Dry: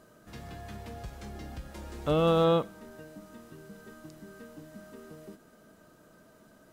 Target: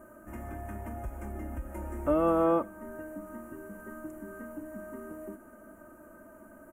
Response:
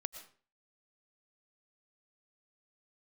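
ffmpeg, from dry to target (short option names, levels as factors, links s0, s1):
-filter_complex "[0:a]aecho=1:1:3.3:0.81,asplit=2[s0][s1];[s1]acompressor=threshold=0.01:ratio=6,volume=1[s2];[s0][s2]amix=inputs=2:normalize=0,asuperstop=centerf=4200:order=4:qfactor=0.56,volume=0.75"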